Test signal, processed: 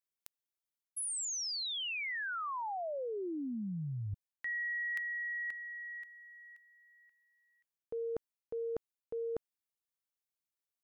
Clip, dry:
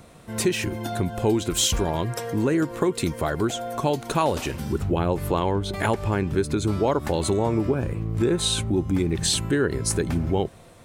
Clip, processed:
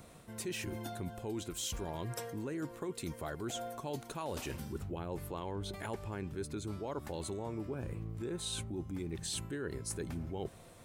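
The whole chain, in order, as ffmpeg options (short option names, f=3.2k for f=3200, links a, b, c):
-af "highshelf=f=7.8k:g=5.5,areverse,acompressor=threshold=-30dB:ratio=6,areverse,volume=-7dB"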